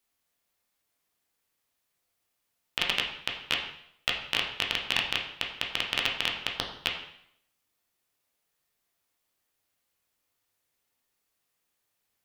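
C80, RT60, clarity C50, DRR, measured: 8.5 dB, 0.70 s, 6.0 dB, -0.5 dB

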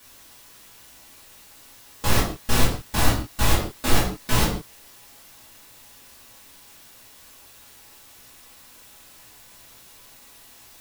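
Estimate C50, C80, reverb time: 5.0 dB, 8.5 dB, no single decay rate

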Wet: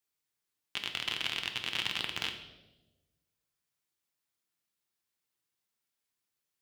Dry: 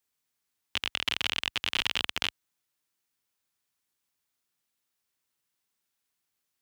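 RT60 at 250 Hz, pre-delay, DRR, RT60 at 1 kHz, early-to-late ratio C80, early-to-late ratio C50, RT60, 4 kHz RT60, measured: 1.4 s, 6 ms, 4.5 dB, 0.90 s, 11.0 dB, 9.0 dB, 1.2 s, 0.90 s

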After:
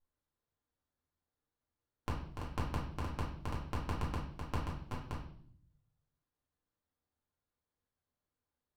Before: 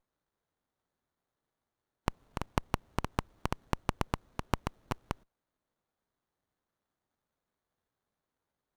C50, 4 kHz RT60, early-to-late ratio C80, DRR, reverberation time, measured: 5.0 dB, 0.60 s, 9.0 dB, -5.5 dB, 0.60 s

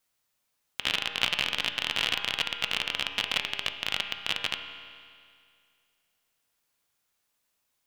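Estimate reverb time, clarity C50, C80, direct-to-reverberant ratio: 2.2 s, 7.0 dB, 8.0 dB, 5.0 dB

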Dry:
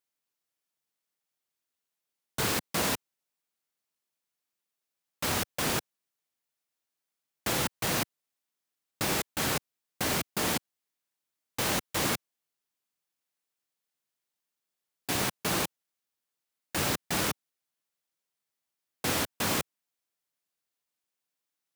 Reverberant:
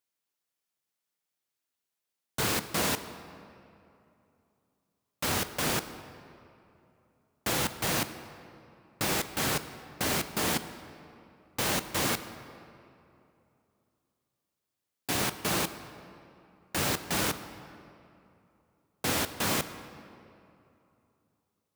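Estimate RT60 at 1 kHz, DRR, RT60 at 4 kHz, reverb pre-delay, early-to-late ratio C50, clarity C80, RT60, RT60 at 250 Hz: 2.7 s, 11.0 dB, 1.7 s, 16 ms, 12.0 dB, 12.5 dB, 2.8 s, 3.0 s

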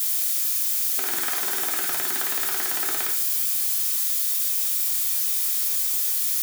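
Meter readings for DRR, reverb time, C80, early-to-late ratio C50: -0.5 dB, 0.40 s, 14.5 dB, 9.5 dB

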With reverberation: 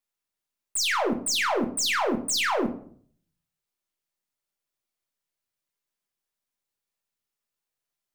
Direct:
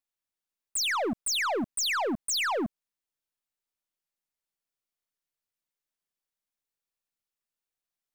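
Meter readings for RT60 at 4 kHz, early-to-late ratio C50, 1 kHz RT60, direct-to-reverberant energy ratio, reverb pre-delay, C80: 0.35 s, 11.5 dB, 0.55 s, 3.0 dB, 5 ms, 15.5 dB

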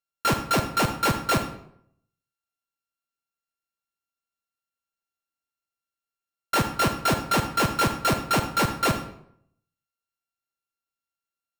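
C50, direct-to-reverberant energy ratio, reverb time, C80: 8.5 dB, 7.0 dB, 0.70 s, 12.0 dB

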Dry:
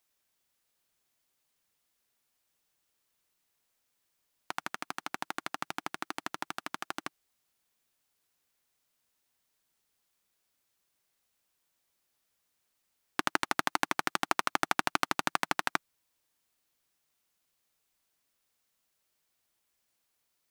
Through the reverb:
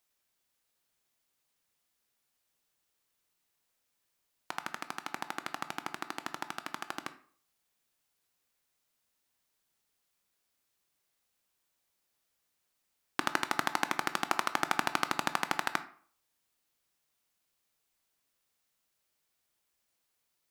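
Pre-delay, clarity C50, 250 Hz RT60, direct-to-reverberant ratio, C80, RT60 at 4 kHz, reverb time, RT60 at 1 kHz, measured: 14 ms, 14.5 dB, 0.50 s, 10.5 dB, 18.5 dB, 0.35 s, 0.50 s, 0.50 s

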